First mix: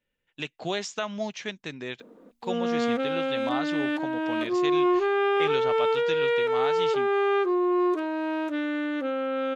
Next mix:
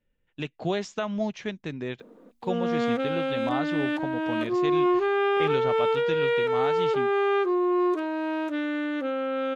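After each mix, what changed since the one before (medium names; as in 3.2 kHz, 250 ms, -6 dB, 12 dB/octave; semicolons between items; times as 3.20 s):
speech: add tilt EQ -2.5 dB/octave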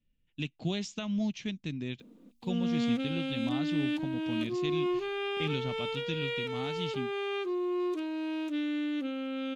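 master: add high-order bell 850 Hz -13 dB 2.6 oct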